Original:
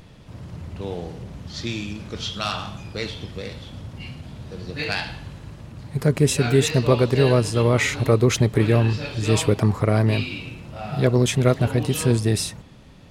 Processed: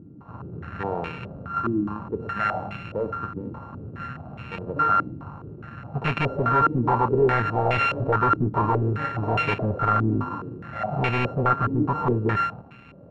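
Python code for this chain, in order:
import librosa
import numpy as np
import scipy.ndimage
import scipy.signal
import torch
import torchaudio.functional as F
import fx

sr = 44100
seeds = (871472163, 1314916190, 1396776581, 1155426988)

y = np.r_[np.sort(x[:len(x) // 32 * 32].reshape(-1, 32), axis=1).ravel(), x[len(x) // 32 * 32:]]
y = scipy.signal.sosfilt(scipy.signal.butter(2, 98.0, 'highpass', fs=sr, output='sos'), y)
y = np.clip(y, -10.0 ** (-21.5 / 20.0), 10.0 ** (-21.5 / 20.0))
y = fx.filter_held_lowpass(y, sr, hz=4.8, low_hz=310.0, high_hz=2400.0)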